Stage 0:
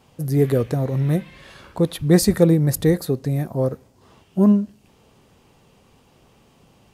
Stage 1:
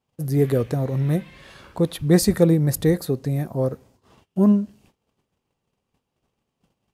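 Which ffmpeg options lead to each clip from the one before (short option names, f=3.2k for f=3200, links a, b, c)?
-af "agate=range=-22dB:threshold=-51dB:ratio=16:detection=peak,volume=-1.5dB"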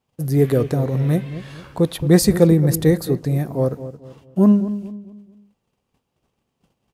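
-filter_complex "[0:a]asplit=2[a][b];[b]adelay=221,lowpass=f=1k:p=1,volume=-12dB,asplit=2[c][d];[d]adelay=221,lowpass=f=1k:p=1,volume=0.39,asplit=2[e][f];[f]adelay=221,lowpass=f=1k:p=1,volume=0.39,asplit=2[g][h];[h]adelay=221,lowpass=f=1k:p=1,volume=0.39[i];[a][c][e][g][i]amix=inputs=5:normalize=0,volume=3dB"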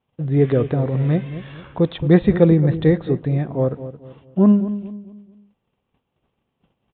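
-af "aresample=8000,aresample=44100"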